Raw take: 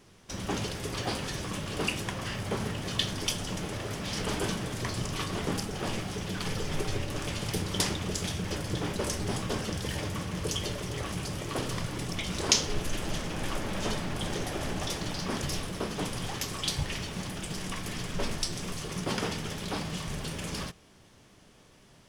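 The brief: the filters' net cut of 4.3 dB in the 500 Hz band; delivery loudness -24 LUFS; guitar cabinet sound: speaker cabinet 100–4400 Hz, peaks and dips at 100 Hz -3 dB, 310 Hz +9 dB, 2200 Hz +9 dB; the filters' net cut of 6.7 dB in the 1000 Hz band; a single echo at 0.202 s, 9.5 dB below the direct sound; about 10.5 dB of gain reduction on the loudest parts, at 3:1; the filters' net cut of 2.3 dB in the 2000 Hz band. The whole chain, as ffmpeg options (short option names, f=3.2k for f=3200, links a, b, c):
-af "equalizer=f=500:t=o:g=-7,equalizer=f=1k:t=o:g=-5,equalizer=f=2k:t=o:g=-7,acompressor=threshold=-35dB:ratio=3,highpass=100,equalizer=f=100:t=q:w=4:g=-3,equalizer=f=310:t=q:w=4:g=9,equalizer=f=2.2k:t=q:w=4:g=9,lowpass=f=4.4k:w=0.5412,lowpass=f=4.4k:w=1.3066,aecho=1:1:202:0.335,volume=14.5dB"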